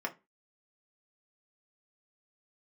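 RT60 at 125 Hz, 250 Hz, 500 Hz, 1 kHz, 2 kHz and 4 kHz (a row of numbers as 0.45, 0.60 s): 0.25, 0.30, 0.25, 0.25, 0.25, 0.20 s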